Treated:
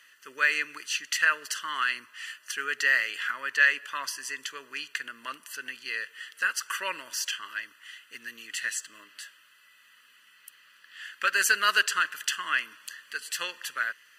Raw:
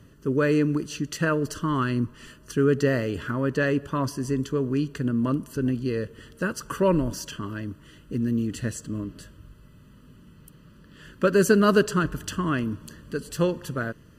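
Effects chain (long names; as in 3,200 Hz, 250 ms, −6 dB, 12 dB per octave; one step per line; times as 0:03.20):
high-pass with resonance 2,000 Hz, resonance Q 2.6
level +4 dB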